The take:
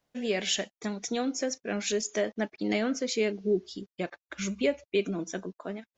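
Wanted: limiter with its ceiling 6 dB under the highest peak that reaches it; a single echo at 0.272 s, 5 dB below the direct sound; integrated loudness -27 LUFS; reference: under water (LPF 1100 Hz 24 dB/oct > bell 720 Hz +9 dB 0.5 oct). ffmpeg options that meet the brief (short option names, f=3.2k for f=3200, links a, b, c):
-af "alimiter=limit=-20.5dB:level=0:latency=1,lowpass=f=1.1k:w=0.5412,lowpass=f=1.1k:w=1.3066,equalizer=f=720:t=o:w=0.5:g=9,aecho=1:1:272:0.562,volume=4.5dB"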